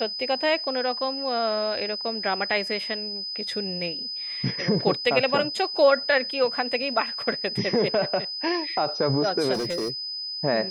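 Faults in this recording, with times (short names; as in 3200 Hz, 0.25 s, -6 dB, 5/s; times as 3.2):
tone 5000 Hz -30 dBFS
9.53–9.9 clipped -24 dBFS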